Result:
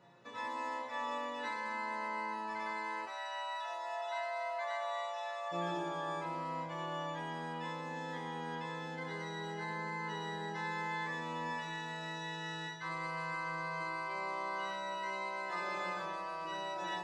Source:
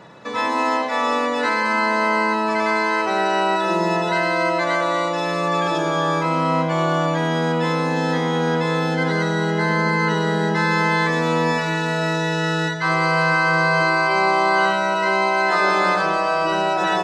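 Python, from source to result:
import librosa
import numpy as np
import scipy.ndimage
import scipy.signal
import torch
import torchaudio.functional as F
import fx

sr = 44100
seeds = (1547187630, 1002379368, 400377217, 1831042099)

y = fx.ellip_highpass(x, sr, hz=630.0, order=4, stop_db=80, at=(3.05, 5.51), fade=0.02)
y = fx.resonator_bank(y, sr, root=46, chord='minor', decay_s=0.31)
y = F.gain(torch.from_numpy(y), -5.0).numpy()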